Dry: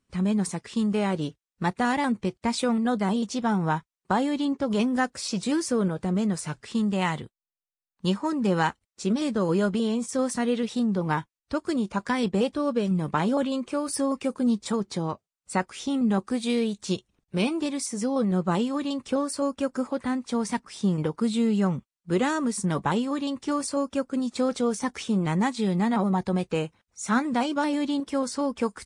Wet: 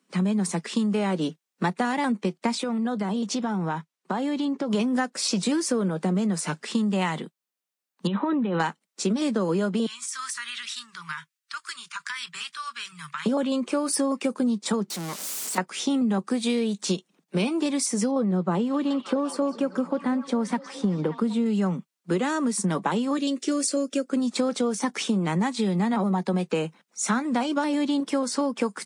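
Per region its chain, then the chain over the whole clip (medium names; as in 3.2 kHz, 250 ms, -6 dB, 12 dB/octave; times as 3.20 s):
2.55–4.73 s: treble shelf 9 kHz -8 dB + compression, threshold -30 dBFS
8.07–8.60 s: brick-wall FIR low-pass 4.1 kHz + compressor with a negative ratio -29 dBFS
9.86–13.26 s: inverse Chebyshev band-stop 190–750 Hz + compression 5:1, threshold -36 dBFS
14.90–15.58 s: zero-crossing glitches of -28 dBFS + peaking EQ 6.4 kHz +9 dB 2.7 oct + valve stage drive 37 dB, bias 0.75
18.11–21.46 s: treble shelf 2.5 kHz -11 dB + repeats whose band climbs or falls 192 ms, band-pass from 4.3 kHz, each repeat -0.7 oct, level -7 dB
23.17–24.09 s: peaking EQ 6.9 kHz +4 dB 0.64 oct + static phaser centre 390 Hz, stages 4
whole clip: steep high-pass 160 Hz 72 dB/octave; compression, threshold -29 dBFS; trim +7.5 dB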